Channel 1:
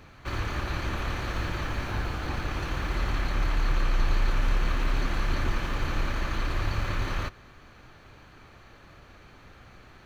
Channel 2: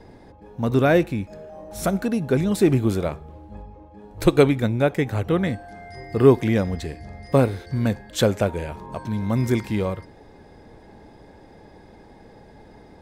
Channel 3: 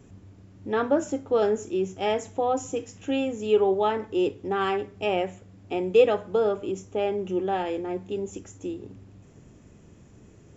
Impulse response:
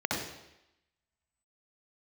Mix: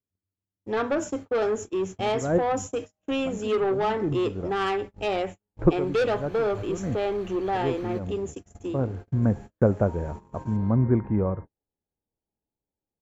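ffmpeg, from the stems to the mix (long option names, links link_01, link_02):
-filter_complex "[0:a]acompressor=threshold=-31dB:ratio=6,adelay=700,volume=-9dB,afade=type=in:start_time=5.63:duration=0.52:silence=0.281838[link_01];[1:a]lowpass=frequency=1400:width=0.5412,lowpass=frequency=1400:width=1.3066,lowshelf=frequency=280:gain=9.5,adelay=1400,volume=-3dB[link_02];[2:a]equalizer=frequency=86:width_type=o:width=0.28:gain=10,asoftclip=type=tanh:threshold=-21.5dB,volume=3dB,asplit=2[link_03][link_04];[link_04]apad=whole_len=635909[link_05];[link_02][link_05]sidechaincompress=threshold=-40dB:ratio=8:attack=16:release=171[link_06];[link_01][link_06][link_03]amix=inputs=3:normalize=0,agate=range=-44dB:threshold=-32dB:ratio=16:detection=peak,lowshelf=frequency=260:gain=-5"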